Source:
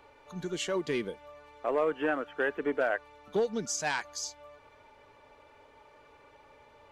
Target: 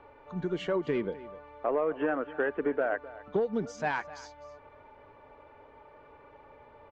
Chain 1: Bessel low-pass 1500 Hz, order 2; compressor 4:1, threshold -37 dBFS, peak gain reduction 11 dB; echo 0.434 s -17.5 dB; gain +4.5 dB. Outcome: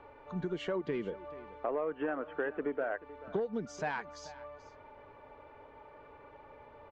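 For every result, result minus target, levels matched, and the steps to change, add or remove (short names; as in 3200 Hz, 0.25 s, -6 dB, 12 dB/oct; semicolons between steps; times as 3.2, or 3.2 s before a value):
echo 0.179 s late; compressor: peak gain reduction +5.5 dB
change: echo 0.255 s -17.5 dB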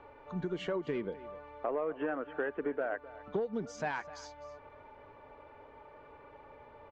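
compressor: peak gain reduction +5.5 dB
change: compressor 4:1, threshold -29.5 dBFS, peak gain reduction 5.5 dB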